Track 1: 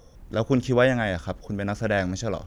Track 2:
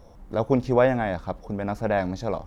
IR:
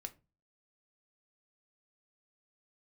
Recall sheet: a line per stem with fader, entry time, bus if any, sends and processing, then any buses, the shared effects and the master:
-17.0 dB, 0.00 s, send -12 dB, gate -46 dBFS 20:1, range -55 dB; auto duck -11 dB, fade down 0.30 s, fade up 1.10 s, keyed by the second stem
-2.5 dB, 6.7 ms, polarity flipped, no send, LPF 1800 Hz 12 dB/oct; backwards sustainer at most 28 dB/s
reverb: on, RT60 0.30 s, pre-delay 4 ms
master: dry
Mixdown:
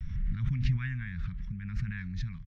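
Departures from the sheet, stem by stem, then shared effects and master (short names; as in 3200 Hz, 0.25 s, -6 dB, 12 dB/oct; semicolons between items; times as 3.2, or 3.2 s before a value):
stem 1 -17.0 dB -> -25.5 dB; master: extra elliptic band-stop 160–1900 Hz, stop band 70 dB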